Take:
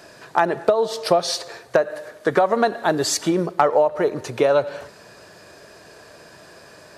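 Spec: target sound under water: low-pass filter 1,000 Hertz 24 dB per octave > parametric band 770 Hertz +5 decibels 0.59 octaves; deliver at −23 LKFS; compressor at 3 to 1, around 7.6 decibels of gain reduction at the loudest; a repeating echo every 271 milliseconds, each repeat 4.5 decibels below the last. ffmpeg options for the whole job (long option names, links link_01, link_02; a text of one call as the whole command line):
ffmpeg -i in.wav -af "acompressor=threshold=-24dB:ratio=3,lowpass=frequency=1000:width=0.5412,lowpass=frequency=1000:width=1.3066,equalizer=frequency=770:width_type=o:width=0.59:gain=5,aecho=1:1:271|542|813|1084|1355|1626|1897|2168|2439:0.596|0.357|0.214|0.129|0.0772|0.0463|0.0278|0.0167|0.01,volume=2.5dB" out.wav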